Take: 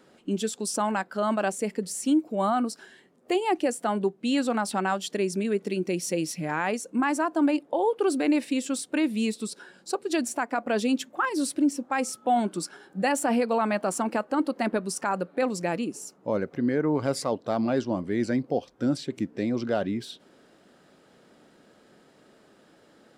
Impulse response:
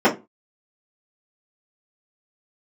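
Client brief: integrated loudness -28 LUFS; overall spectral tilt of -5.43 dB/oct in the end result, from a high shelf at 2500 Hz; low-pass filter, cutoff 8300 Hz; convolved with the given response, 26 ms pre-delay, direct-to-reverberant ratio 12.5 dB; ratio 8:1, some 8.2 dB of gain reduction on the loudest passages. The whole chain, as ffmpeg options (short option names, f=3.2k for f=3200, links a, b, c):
-filter_complex "[0:a]lowpass=8.3k,highshelf=f=2.5k:g=-7.5,acompressor=threshold=-28dB:ratio=8,asplit=2[a][b];[1:a]atrim=start_sample=2205,adelay=26[c];[b][c]afir=irnorm=-1:irlink=0,volume=-35dB[d];[a][d]amix=inputs=2:normalize=0,volume=5dB"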